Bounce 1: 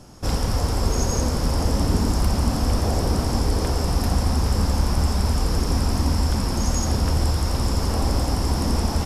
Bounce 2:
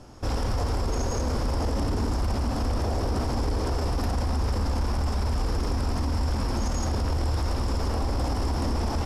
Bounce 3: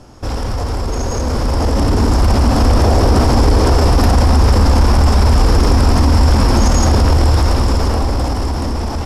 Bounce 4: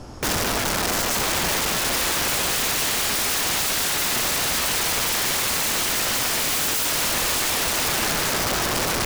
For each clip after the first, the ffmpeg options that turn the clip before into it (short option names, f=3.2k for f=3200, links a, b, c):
-af "lowpass=f=3.4k:p=1,equalizer=f=170:t=o:w=0.46:g=-9.5,alimiter=limit=-19dB:level=0:latency=1:release=14"
-af "dynaudnorm=f=320:g=11:m=9dB,volume=6.5dB"
-af "aeval=exprs='(mod(10*val(0)+1,2)-1)/10':c=same,volume=2dB"